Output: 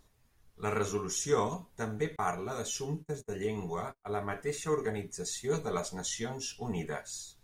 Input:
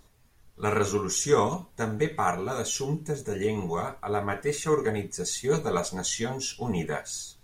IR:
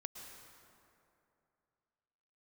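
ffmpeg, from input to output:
-filter_complex "[0:a]asettb=1/sr,asplit=3[s0][s1][s2];[s0]atrim=end=2.164[s3];[s1]atrim=start=2.16:end=4.24,asetpts=PTS-STARTPTS,afade=t=in:d=0.004:c=qsin,afade=t=out:st=2.076:d=0.004:c=qsin,agate=range=0.02:threshold=0.0224:ratio=16:detection=peak[s4];[s2]atrim=start=4.236[s5];[s3][s4]acrossfade=d=0.004:c1=hsin:c2=qsin[s6];[s6][s5]acrossfade=d=0.004:c1=qsin:c2=hsin,volume=0.473"

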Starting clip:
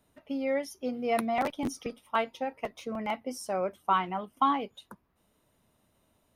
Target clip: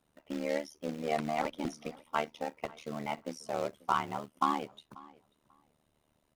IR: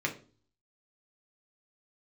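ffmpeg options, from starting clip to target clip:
-filter_complex "[0:a]acrossover=split=1200[s0][s1];[s0]acrusher=bits=3:mode=log:mix=0:aa=0.000001[s2];[s1]highshelf=f=12000:g=-9[s3];[s2][s3]amix=inputs=2:normalize=0,tremolo=f=75:d=0.974,acrossover=split=7900[s4][s5];[s5]acompressor=threshold=0.00112:ratio=4:attack=1:release=60[s6];[s4][s6]amix=inputs=2:normalize=0,asplit=2[s7][s8];[s8]adelay=539,lowpass=f=3800:p=1,volume=0.0794,asplit=2[s9][s10];[s10]adelay=539,lowpass=f=3800:p=1,volume=0.18[s11];[s7][s9][s11]amix=inputs=3:normalize=0"

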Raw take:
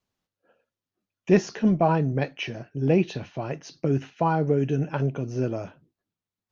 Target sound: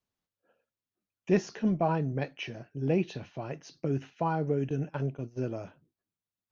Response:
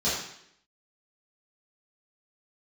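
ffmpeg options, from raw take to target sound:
-filter_complex "[0:a]asettb=1/sr,asplit=3[s0][s1][s2];[s0]atrim=end=4.694[s3];[s1]atrim=start=4.69:end=5.48,asetpts=PTS-STARTPTS,afade=t=in:d=0.004:c=qsin,afade=t=out:st=0.786:d=0.004:c=qsin,agate=range=0.141:threshold=0.0355:ratio=16:detection=peak[s4];[s2]atrim=start=5.476[s5];[s3][s4]acrossfade=d=0.004:c1=hsin:c2=qsin[s6];[s6][s5]acrossfade=d=0.004:c1=qsin:c2=hsin,volume=0.473"

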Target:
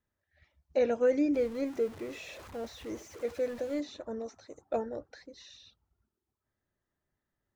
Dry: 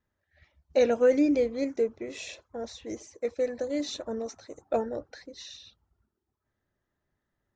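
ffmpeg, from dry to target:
-filter_complex "[0:a]asettb=1/sr,asplit=3[s0][s1][s2];[s0]atrim=end=1.344[s3];[s1]atrim=start=1.34:end=3.8,asetpts=PTS-STARTPTS,afade=t=in:d=0.004:c=qsin,afade=t=out:st=2.456:d=0.004:c=qsin,aeval=exprs='val(0)+0.5*0.0119*sgn(val(0))':c=same[s4];[s2]atrim=start=3.796[s5];[s3][s4]acrossfade=d=0.004:c1=hsin:c2=qsin[s6];[s6][s5]acrossfade=d=0.004:c1=qsin:c2=hsin,acrossover=split=2900[s7][s8];[s8]acompressor=threshold=0.00398:ratio=4:attack=1:release=60[s9];[s7][s9]amix=inputs=2:normalize=0,volume=0.596"

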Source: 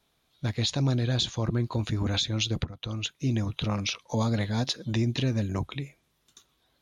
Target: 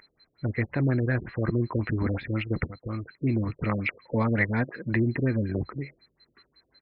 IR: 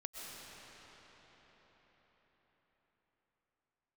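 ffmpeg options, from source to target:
-filter_complex "[0:a]asettb=1/sr,asplit=3[s0][s1][s2];[s0]atrim=end=2.614[s3];[s1]atrim=start=2.61:end=4.93,asetpts=PTS-STARTPTS,afade=t=in:d=0.004:c=qsin,afade=t=out:st=2.316:d=0.004:c=qsin,highshelf=f=3200:g=9.5[s4];[s2]atrim=start=4.926[s5];[s3][s4]acrossfade=d=0.004:c1=hsin:c2=qsin[s6];[s6][s5]acrossfade=d=0.004:c1=qsin:c2=hsin,aeval=exprs='val(0)+0.0251*sin(2*PI*4100*n/s)':c=same,firequalizer=gain_entry='entry(140,0);entry(370,5);entry(750,-1);entry(2000,14);entry(3400,-22)':delay=0.05:min_phase=1,afftfilt=real='re*lt(b*sr/1024,570*pow(5300/570,0.5+0.5*sin(2*PI*5.5*pts/sr)))':imag='im*lt(b*sr/1024,570*pow(5300/570,0.5+0.5*sin(2*PI*5.5*pts/sr)))':win_size=1024:overlap=0.75"

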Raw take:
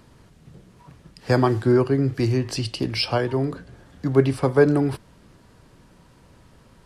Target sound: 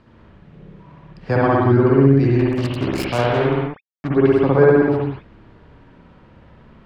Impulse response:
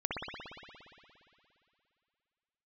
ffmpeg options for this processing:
-filter_complex "[0:a]lowpass=3100,asettb=1/sr,asplit=3[s0][s1][s2];[s0]atrim=end=2.394[s3];[s1]atrim=start=2.39:end=4.09,asetpts=PTS-STARTPTS,afade=t=in:d=0.004:c=qsin,afade=t=out:st=1.696:d=0.004:c=qsin,acrusher=bits=3:mix=0:aa=0.5[s4];[s2]atrim=start=4.086[s5];[s3][s4]acrossfade=d=0.004:c1=hsin:c2=qsin[s6];[s6][s5]acrossfade=d=0.004:c1=qsin:c2=hsin[s7];[1:a]atrim=start_sample=2205,afade=t=out:st=0.32:d=0.01,atrim=end_sample=14553[s8];[s7][s8]afir=irnorm=-1:irlink=0"

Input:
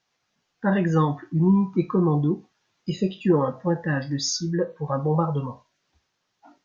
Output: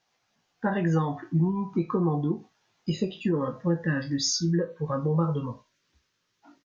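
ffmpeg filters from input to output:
-filter_complex "[0:a]asetnsamples=n=441:p=0,asendcmd='3.17 equalizer g -11',equalizer=f=760:w=2.6:g=4,acompressor=threshold=0.0794:ratio=6,asplit=2[s0][s1];[s1]adelay=18,volume=0.422[s2];[s0][s2]amix=inputs=2:normalize=0"

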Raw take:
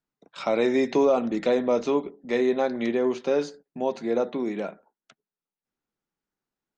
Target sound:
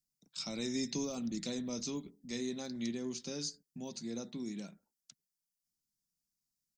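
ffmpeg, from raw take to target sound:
-af "firequalizer=gain_entry='entry(160,0);entry(430,-19);entry(670,-21);entry(3300,-5);entry(4900,10)':delay=0.05:min_phase=1,volume=0.668"

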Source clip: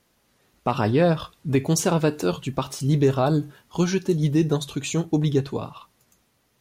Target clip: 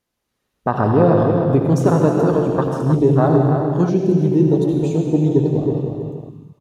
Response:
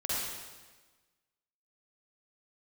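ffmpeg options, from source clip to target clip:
-filter_complex "[0:a]asplit=2[s0][s1];[s1]adelay=314,lowpass=f=2300:p=1,volume=0.531,asplit=2[s2][s3];[s3]adelay=314,lowpass=f=2300:p=1,volume=0.24,asplit=2[s4][s5];[s5]adelay=314,lowpass=f=2300:p=1,volume=0.24[s6];[s0][s2][s4][s6]amix=inputs=4:normalize=0,asplit=2[s7][s8];[1:a]atrim=start_sample=2205,asetrate=28665,aresample=44100[s9];[s8][s9]afir=irnorm=-1:irlink=0,volume=0.376[s10];[s7][s10]amix=inputs=2:normalize=0,afwtdn=0.0631,volume=1.19"

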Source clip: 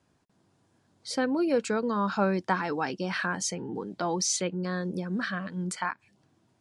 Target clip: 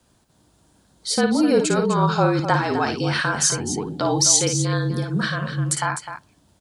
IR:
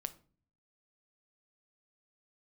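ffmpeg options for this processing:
-filter_complex "[0:a]afreqshift=-39,aexciter=amount=2.7:drive=2.7:freq=3100,aecho=1:1:55|254:0.447|0.316,asplit=2[s0][s1];[1:a]atrim=start_sample=2205,lowpass=2300[s2];[s1][s2]afir=irnorm=-1:irlink=0,volume=0.282[s3];[s0][s3]amix=inputs=2:normalize=0,volume=1.88"

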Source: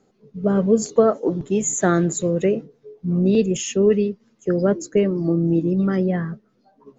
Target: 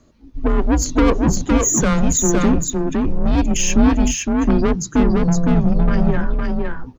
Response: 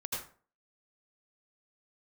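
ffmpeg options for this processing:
-af "asoftclip=type=tanh:threshold=0.106,afreqshift=-160,aecho=1:1:511:0.708,volume=2.51"

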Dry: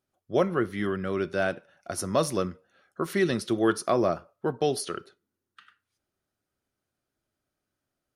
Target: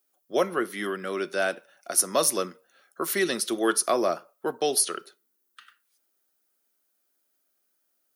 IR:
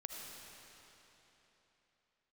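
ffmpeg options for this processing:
-filter_complex "[0:a]aemphasis=mode=production:type=bsi,acrossover=split=160|830|2800[s0][s1][s2][s3];[s0]acrusher=bits=2:mix=0:aa=0.5[s4];[s4][s1][s2][s3]amix=inputs=4:normalize=0,volume=1.19"

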